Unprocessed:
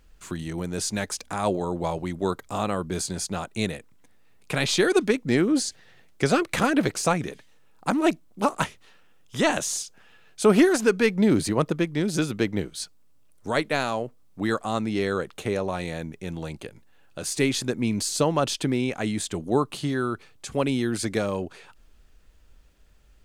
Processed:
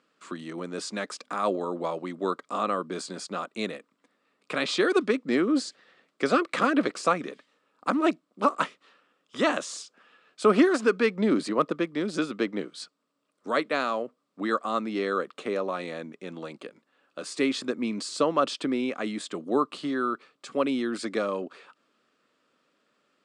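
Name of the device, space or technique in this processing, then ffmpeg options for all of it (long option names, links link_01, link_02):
television speaker: -af "highpass=frequency=210:width=0.5412,highpass=frequency=210:width=1.3066,equalizer=frequency=270:width_type=q:width=4:gain=3,equalizer=frequency=540:width_type=q:width=4:gain=4,equalizer=frequency=840:width_type=q:width=4:gain=-4,equalizer=frequency=1200:width_type=q:width=4:gain=10,equalizer=frequency=6300:width_type=q:width=4:gain=-8,lowpass=frequency=7600:width=0.5412,lowpass=frequency=7600:width=1.3066,volume=-3.5dB"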